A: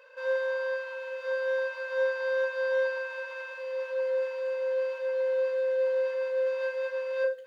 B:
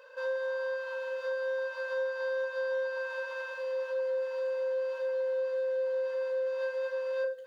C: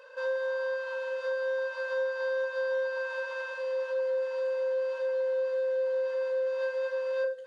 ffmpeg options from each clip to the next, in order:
-af "equalizer=f=2300:w=3.1:g=-9.5,acompressor=threshold=0.02:ratio=3,volume=1.33"
-af "aresample=22050,aresample=44100,volume=1.26"

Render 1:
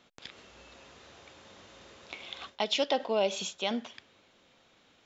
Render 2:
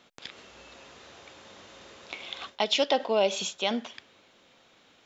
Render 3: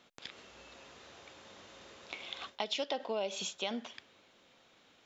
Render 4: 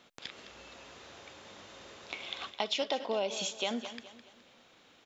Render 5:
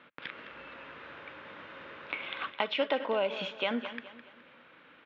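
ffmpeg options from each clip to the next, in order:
-af "lowshelf=f=140:g=-6,volume=1.58"
-af "acompressor=threshold=0.0355:ratio=3,volume=0.596"
-af "aecho=1:1:210|420|630|840:0.224|0.0851|0.0323|0.0123,volume=1.41"
-af "highpass=110,equalizer=f=110:t=q:w=4:g=-8,equalizer=f=210:t=q:w=4:g=-6,equalizer=f=390:t=q:w=4:g=-7,equalizer=f=730:t=q:w=4:g=-10,equalizer=f=1500:t=q:w=4:g=4,lowpass=f=2600:w=0.5412,lowpass=f=2600:w=1.3066,volume=2.24"

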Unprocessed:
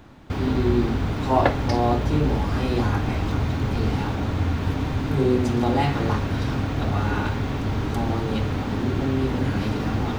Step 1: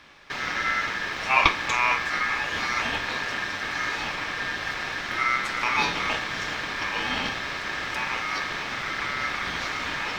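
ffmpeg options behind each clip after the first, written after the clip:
-af "equalizer=f=125:t=o:w=1:g=-10,equalizer=f=250:t=o:w=1:g=-9,equalizer=f=500:t=o:w=1:g=8,equalizer=f=2000:t=o:w=1:g=7,equalizer=f=4000:t=o:w=1:g=6,aeval=exprs='val(0)*sin(2*PI*1700*n/s)':c=same,volume=0.891"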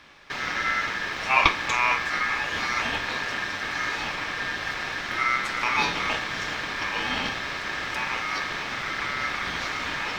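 -af anull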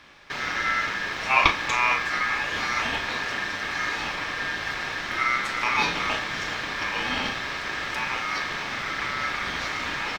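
-filter_complex "[0:a]asplit=2[s0][s1];[s1]adelay=36,volume=0.282[s2];[s0][s2]amix=inputs=2:normalize=0"

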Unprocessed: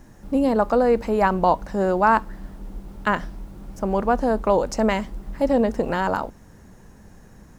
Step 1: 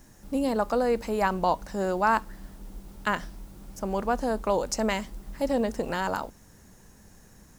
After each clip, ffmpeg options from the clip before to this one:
-af "highshelf=f=3100:g=12,volume=0.447"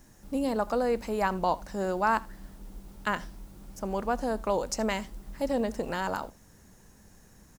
-af "aecho=1:1:80:0.0708,volume=0.75"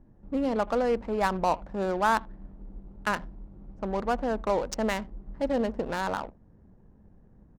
-af "adynamicsmooth=sensitivity=6:basefreq=580,volume=1.19"

